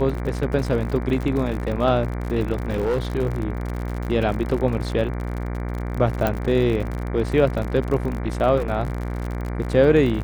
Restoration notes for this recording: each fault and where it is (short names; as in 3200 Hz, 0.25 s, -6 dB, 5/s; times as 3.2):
buzz 60 Hz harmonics 39 -27 dBFS
crackle 62/s -28 dBFS
2.52–2.98 clipped -17.5 dBFS
6.27 pop -8 dBFS